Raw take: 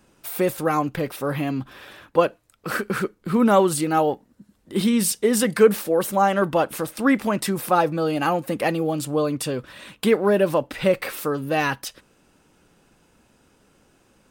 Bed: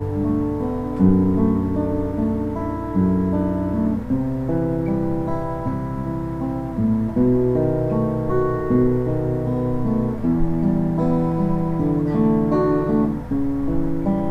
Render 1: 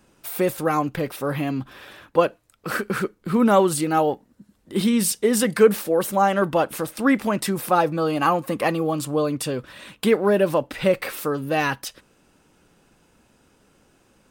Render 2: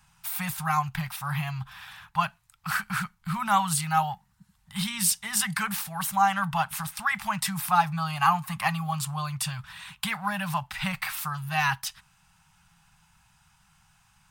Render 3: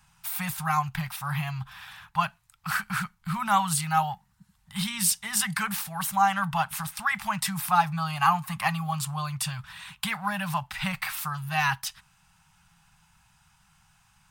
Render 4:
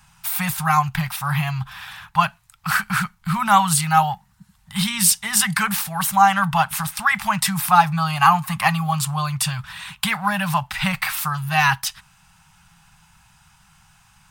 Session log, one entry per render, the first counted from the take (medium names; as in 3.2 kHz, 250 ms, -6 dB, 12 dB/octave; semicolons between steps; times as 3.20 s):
7.98–9.11 s: peaking EQ 1.1 kHz +10 dB 0.28 oct
elliptic band-stop 170–820 Hz, stop band 40 dB
no audible change
trim +8 dB; peak limiter -2 dBFS, peak gain reduction 1 dB